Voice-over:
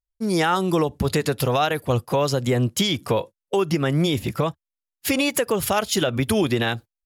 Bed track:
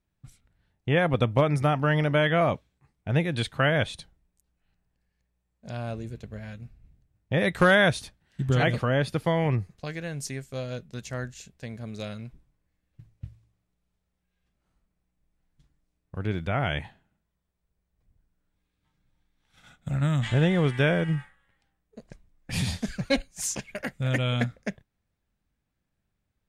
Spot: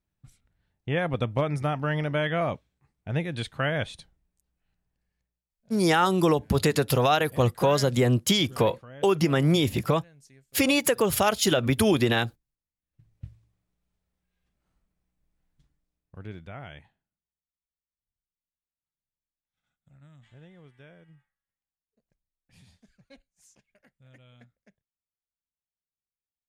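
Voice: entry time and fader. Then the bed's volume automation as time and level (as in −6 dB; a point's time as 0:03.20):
5.50 s, −1.0 dB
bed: 0:05.19 −4 dB
0:05.54 −21 dB
0:12.76 −21 dB
0:13.17 −1.5 dB
0:15.50 −1.5 dB
0:17.81 −29 dB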